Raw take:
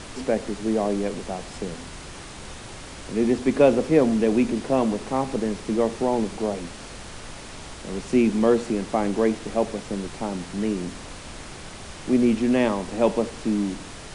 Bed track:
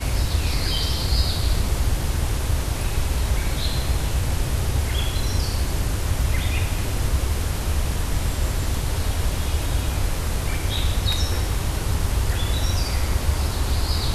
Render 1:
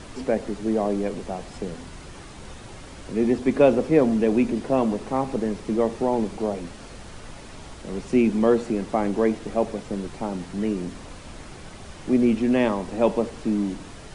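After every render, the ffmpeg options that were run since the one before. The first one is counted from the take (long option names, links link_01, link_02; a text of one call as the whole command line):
ffmpeg -i in.wav -af "afftdn=noise_reduction=6:noise_floor=-40" out.wav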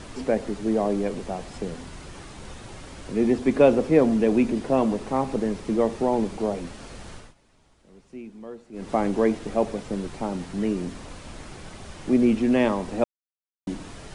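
ffmpeg -i in.wav -filter_complex "[0:a]asplit=5[link_01][link_02][link_03][link_04][link_05];[link_01]atrim=end=7.34,asetpts=PTS-STARTPTS,afade=type=out:start_time=7.13:duration=0.21:silence=0.0944061[link_06];[link_02]atrim=start=7.34:end=8.72,asetpts=PTS-STARTPTS,volume=-20.5dB[link_07];[link_03]atrim=start=8.72:end=13.04,asetpts=PTS-STARTPTS,afade=type=in:duration=0.21:silence=0.0944061,afade=type=out:start_time=4.316:duration=0.004:curve=hsin[link_08];[link_04]atrim=start=13.04:end=13.67,asetpts=PTS-STARTPTS,volume=0[link_09];[link_05]atrim=start=13.67,asetpts=PTS-STARTPTS,afade=type=in:duration=0.004:curve=hsin[link_10];[link_06][link_07][link_08][link_09][link_10]concat=n=5:v=0:a=1" out.wav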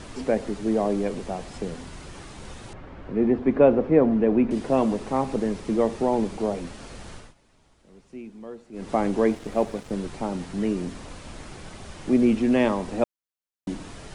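ffmpeg -i in.wav -filter_complex "[0:a]asettb=1/sr,asplit=3[link_01][link_02][link_03];[link_01]atrim=end=2.734[link_04];[link_02]atrim=start=2.73:end=4.51,asetpts=PTS-STARTPTS,afade=type=in:duration=0.004:curve=qsin,afade=type=out:start_time=1.776:duration=0.004:curve=qsin,lowpass=1800[link_05];[link_03]atrim=start=4.506[link_06];[link_04][link_05]acrossfade=duration=0.004:curve1=hsin:curve2=qsin[link_07];[link_07][link_06]acrossfade=duration=0.004:curve1=qsin:curve2=hsin,asettb=1/sr,asplit=3[link_08][link_09][link_10];[link_08]atrim=end=9.304[link_11];[link_09]atrim=start=9.3:end=9.91,asetpts=PTS-STARTPTS,afade=type=in:duration=0.004:curve=qsin,afade=type=out:start_time=0.606:duration=0.004:curve=qsin,aeval=exprs='sgn(val(0))*max(abs(val(0))-0.00562,0)':channel_layout=same[link_12];[link_10]atrim=start=9.906[link_13];[link_11][link_12]acrossfade=duration=0.004:curve1=hsin:curve2=qsin[link_14];[link_14][link_13]acrossfade=duration=0.004:curve1=qsin:curve2=hsin" out.wav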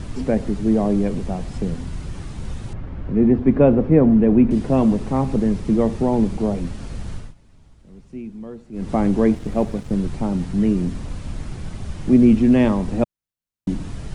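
ffmpeg -i in.wav -af "bass=frequency=250:gain=14,treble=frequency=4000:gain=0" out.wav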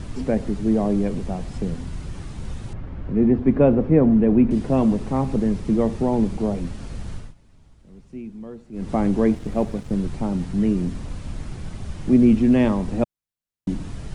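ffmpeg -i in.wav -af "volume=-2dB" out.wav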